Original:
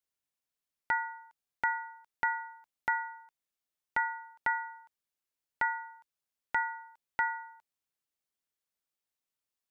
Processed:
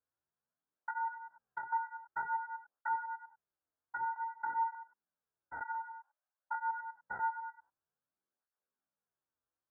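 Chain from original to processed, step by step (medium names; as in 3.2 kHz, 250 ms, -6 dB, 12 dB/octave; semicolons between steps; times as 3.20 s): spectrogram pixelated in time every 100 ms; 5.75–6.71 s: steep high-pass 520 Hz 96 dB/octave; low-pass that closes with the level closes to 890 Hz, closed at -31.5 dBFS; elliptic low-pass 1.6 kHz, stop band 40 dB; 1.14–1.73 s: compression 3:1, threshold -52 dBFS, peak gain reduction 12.5 dB; peak limiter -33 dBFS, peak gain reduction 8.5 dB; gain riding within 4 dB 0.5 s; 4.12–4.75 s: flutter echo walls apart 6.8 m, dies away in 0.34 s; cancelling through-zero flanger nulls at 0.53 Hz, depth 5.6 ms; trim +9 dB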